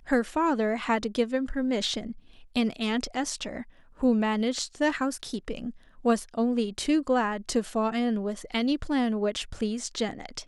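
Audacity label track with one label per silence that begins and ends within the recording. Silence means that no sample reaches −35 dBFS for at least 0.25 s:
2.120000	2.560000	silence
3.620000	4.010000	silence
5.700000	6.050000	silence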